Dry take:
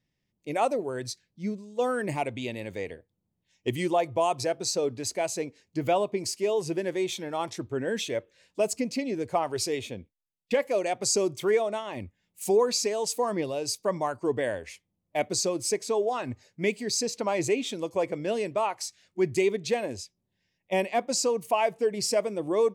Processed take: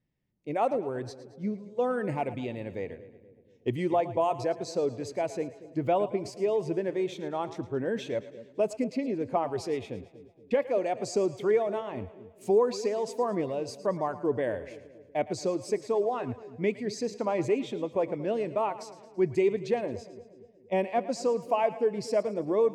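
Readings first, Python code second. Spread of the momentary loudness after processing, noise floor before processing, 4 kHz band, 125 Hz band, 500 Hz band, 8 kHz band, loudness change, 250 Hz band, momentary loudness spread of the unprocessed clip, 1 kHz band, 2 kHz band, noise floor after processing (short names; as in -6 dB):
11 LU, -80 dBFS, -11.0 dB, 0.0 dB, -0.5 dB, -15.0 dB, -1.5 dB, 0.0 dB, 10 LU, -1.5 dB, -5.5 dB, -57 dBFS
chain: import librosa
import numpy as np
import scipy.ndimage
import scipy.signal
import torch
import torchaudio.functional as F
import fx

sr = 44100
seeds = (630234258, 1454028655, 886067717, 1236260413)

y = fx.lowpass(x, sr, hz=1200.0, slope=6)
y = fx.echo_split(y, sr, split_hz=520.0, low_ms=236, high_ms=111, feedback_pct=52, wet_db=-15.0)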